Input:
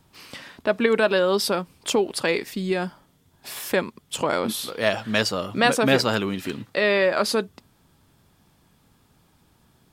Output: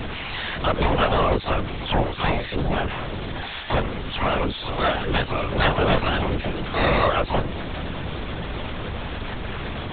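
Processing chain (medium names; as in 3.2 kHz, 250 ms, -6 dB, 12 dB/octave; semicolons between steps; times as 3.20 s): jump at every zero crossing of -19.5 dBFS; harmony voices +12 st -2 dB; LPC vocoder at 8 kHz whisper; trim -4.5 dB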